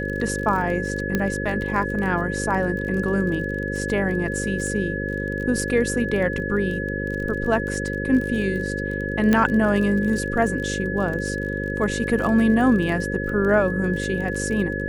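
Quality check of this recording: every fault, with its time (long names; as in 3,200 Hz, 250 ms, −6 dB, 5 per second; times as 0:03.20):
mains buzz 50 Hz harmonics 11 −28 dBFS
surface crackle 30 per second −29 dBFS
whistle 1,700 Hz −29 dBFS
0:01.15: click −9 dBFS
0:09.33: click −7 dBFS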